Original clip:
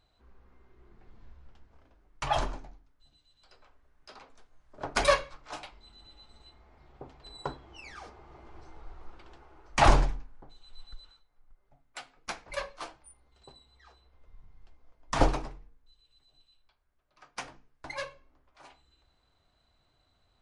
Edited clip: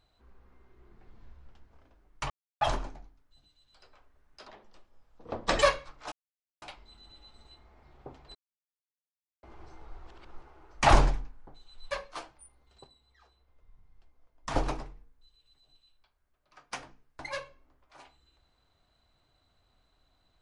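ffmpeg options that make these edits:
-filter_complex "[0:a]asplit=12[a][b][c][d][e][f][g][h][i][j][k][l];[a]atrim=end=2.3,asetpts=PTS-STARTPTS,afade=t=out:st=2.296:d=0.004:c=hsin,apad=pad_dur=0.31[m];[b]atrim=start=2.3:end=4.174,asetpts=PTS-STARTPTS,afade=t=in:d=0.004:c=hsin[n];[c]atrim=start=4.17:end=5.07,asetpts=PTS-STARTPTS,asetrate=34839,aresample=44100[o];[d]atrim=start=5.066:end=5.57,asetpts=PTS-STARTPTS,afade=t=out:st=0.5:d=0.004:c=hsin,apad=pad_dur=0.5[p];[e]atrim=start=5.57:end=7.3,asetpts=PTS-STARTPTS,afade=t=in:d=0.004:c=hsin,afade=t=out:st=1.726:d=0.004:c=hsin[q];[f]atrim=start=7.3:end=8.38,asetpts=PTS-STARTPTS,volume=0[r];[g]atrim=start=8.38:end=9.022,asetpts=PTS-STARTPTS,afade=t=in:d=0.004:c=hsin[s];[h]atrim=start=9.018:end=9.372,asetpts=PTS-STARTPTS,areverse[t];[i]atrim=start=9.368:end=10.862[u];[j]atrim=start=12.558:end=13.492[v];[k]atrim=start=13.488:end=15.312,asetpts=PTS-STARTPTS,volume=-5.5dB[w];[l]atrim=start=15.308[x];[m][n]concat=n=2:v=0:a=1[y];[y][o]acrossfade=d=0.004:c1=hsin:c2=hsin[z];[p][q][r][s]concat=n=4:v=0:a=1[aa];[z][aa]acrossfade=d=0.004:c1=hsin:c2=hsin[ab];[ab][t]acrossfade=d=0.004:c1=hsin:c2=hsin[ac];[ac][u]acrossfade=d=0.004:c1=hsin:c2=hsin[ad];[ad][v]acrossfade=d=0.004:c1=hsin:c2=hsin[ae];[ae][w]acrossfade=d=0.004:c1=hsin:c2=hsin[af];[af][x]acrossfade=d=0.004:c1=hsin:c2=hsin"

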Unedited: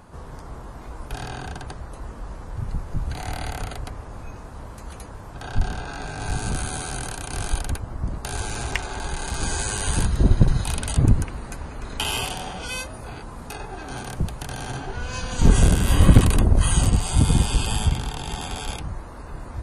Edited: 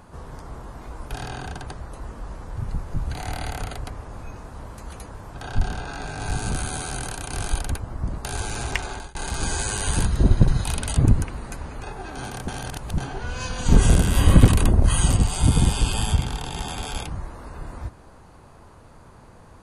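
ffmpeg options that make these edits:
-filter_complex "[0:a]asplit=5[a][b][c][d][e];[a]atrim=end=9.15,asetpts=PTS-STARTPTS,afade=t=out:st=8.9:d=0.25[f];[b]atrim=start=9.15:end=11.832,asetpts=PTS-STARTPTS,afade=t=in:d=0.004:c=hsin[g];[c]atrim=start=13.558:end=14.212[h];[d]atrim=start=14.208:end=14.712,asetpts=PTS-STARTPTS,areverse[i];[e]atrim=start=14.708[j];[f][g]concat=n=2:v=0:a=1[k];[k][h]acrossfade=d=0.004:c1=hsin:c2=hsin[l];[l][i]acrossfade=d=0.004:c1=hsin:c2=hsin[m];[m][j]acrossfade=d=0.004:c1=hsin:c2=hsin"

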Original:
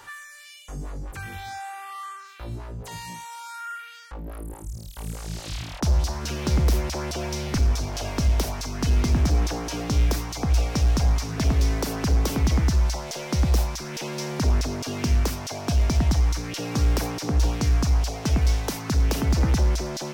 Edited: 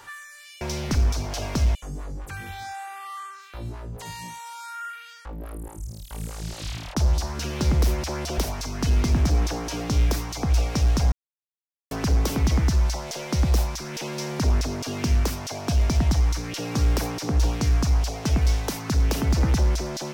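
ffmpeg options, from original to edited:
-filter_complex "[0:a]asplit=6[a][b][c][d][e][f];[a]atrim=end=0.612[g];[b]atrim=start=7.238:end=8.382[h];[c]atrim=start=0.608:end=7.242[i];[d]atrim=start=8.378:end=11.12,asetpts=PTS-STARTPTS,afade=t=out:st=2.738:d=0.004:c=hsin[j];[e]atrim=start=11.12:end=11.91,asetpts=PTS-STARTPTS,volume=0[k];[f]atrim=start=11.91,asetpts=PTS-STARTPTS,afade=t=in:d=0.004:c=hsin[l];[g][h]acrossfade=d=0.004:c1=hsin:c2=hsin[m];[m][i]acrossfade=d=0.004:c1=hsin:c2=hsin[n];[j][k][l]concat=n=3:v=0:a=1[o];[n][o]acrossfade=d=0.004:c1=hsin:c2=hsin"

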